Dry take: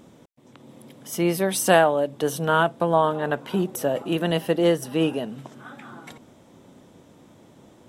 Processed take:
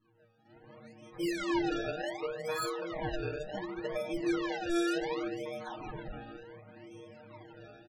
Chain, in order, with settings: level rider gain up to 16 dB; bass shelf 260 Hz -5.5 dB; inharmonic resonator 110 Hz, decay 0.82 s, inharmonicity 0.008; compression 2:1, threshold -42 dBFS, peak gain reduction 12.5 dB; on a send: feedback echo behind a low-pass 149 ms, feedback 56%, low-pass 800 Hz, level -4 dB; on the sum: level-controlled noise filter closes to 320 Hz, open at -34.5 dBFS; decimation with a swept rate 29×, swing 100% 0.68 Hz; loudest bins only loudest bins 64; comb 6.4 ms, depth 74%; Shepard-style flanger rising 1.9 Hz; trim +5 dB

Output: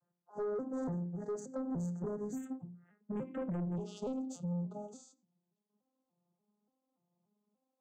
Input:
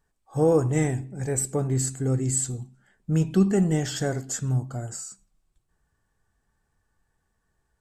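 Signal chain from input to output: vocoder on a broken chord minor triad, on F3, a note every 290 ms; tone controls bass -2 dB, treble -8 dB; hum notches 60/120/180/240/300/360 Hz; compression 12:1, threshold -27 dBFS, peak gain reduction 12.5 dB; saturation -32 dBFS, distortion -11 dB; Butterworth band-stop 2.7 kHz, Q 0.77, from 2.35 s 4.8 kHz, from 3.75 s 1.8 kHz; endings held to a fixed fall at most 230 dB/s; trim -1 dB

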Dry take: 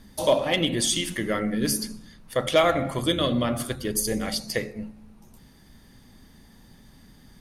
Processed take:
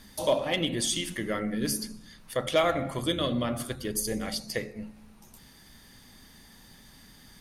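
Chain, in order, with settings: tape noise reduction on one side only encoder only; trim -4.5 dB

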